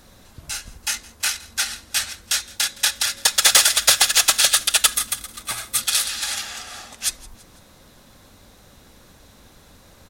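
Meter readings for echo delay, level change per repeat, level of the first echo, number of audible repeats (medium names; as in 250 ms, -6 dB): 166 ms, -6.0 dB, -22.5 dB, 3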